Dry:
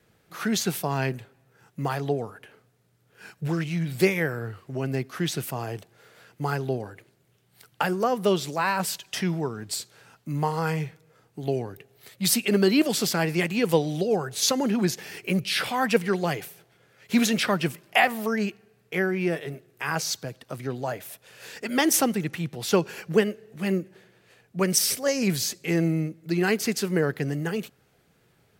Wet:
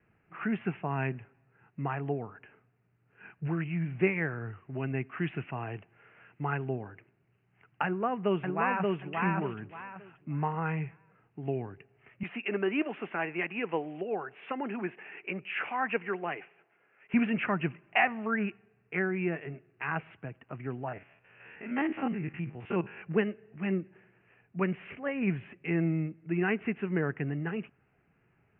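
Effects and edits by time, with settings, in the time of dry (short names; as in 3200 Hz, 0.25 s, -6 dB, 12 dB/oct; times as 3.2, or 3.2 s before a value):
4.75–6.65 high shelf 2900 Hz +9 dB
7.85–9.01 echo throw 0.58 s, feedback 25%, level -2 dB
12.23–17.14 HPF 350 Hz
18.28–18.99 dynamic EQ 1400 Hz, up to +7 dB, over -47 dBFS, Q 2.2
20.88–23.02 stepped spectrum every 50 ms
whole clip: steep low-pass 2800 Hz 96 dB/oct; bell 520 Hz -7.5 dB 0.44 oct; gain -4.5 dB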